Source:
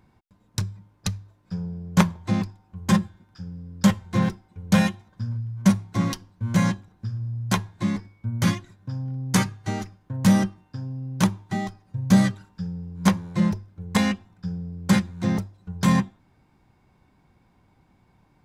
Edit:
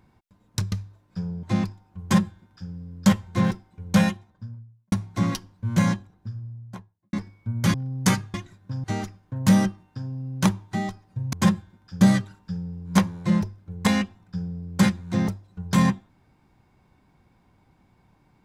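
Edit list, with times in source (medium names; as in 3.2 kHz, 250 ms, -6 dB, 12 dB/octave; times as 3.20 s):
0.72–1.07 s: delete
1.78–2.21 s: delete
2.80–3.48 s: copy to 12.11 s
4.67–5.70 s: studio fade out
6.51–7.91 s: studio fade out
8.52–9.02 s: move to 9.62 s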